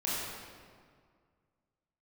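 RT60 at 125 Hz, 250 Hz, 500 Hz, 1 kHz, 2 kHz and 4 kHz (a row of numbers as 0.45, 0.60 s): 2.4, 2.2, 2.0, 1.9, 1.6, 1.3 s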